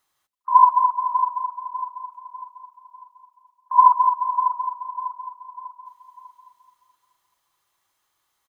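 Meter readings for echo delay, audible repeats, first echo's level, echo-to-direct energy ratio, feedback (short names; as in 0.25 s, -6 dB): 0.597 s, 4, -9.0 dB, -8.0 dB, 40%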